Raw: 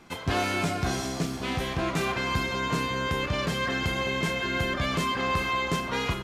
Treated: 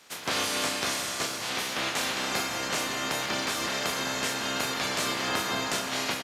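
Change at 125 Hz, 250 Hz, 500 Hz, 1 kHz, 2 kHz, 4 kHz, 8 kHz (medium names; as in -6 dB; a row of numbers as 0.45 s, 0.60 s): -13.0 dB, -5.5 dB, -3.5 dB, -2.5 dB, -1.0 dB, +3.5 dB, +8.5 dB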